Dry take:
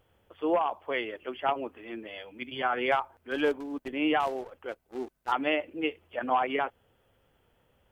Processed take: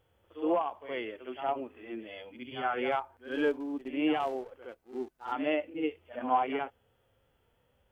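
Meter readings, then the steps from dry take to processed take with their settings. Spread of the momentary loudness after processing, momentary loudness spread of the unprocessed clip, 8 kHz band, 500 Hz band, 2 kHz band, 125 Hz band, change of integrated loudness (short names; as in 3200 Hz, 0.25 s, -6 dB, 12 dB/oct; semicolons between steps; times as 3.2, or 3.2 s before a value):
13 LU, 13 LU, n/a, -2.0 dB, -6.0 dB, -2.5 dB, -2.5 dB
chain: pre-echo 67 ms -14 dB; harmonic-percussive split percussive -13 dB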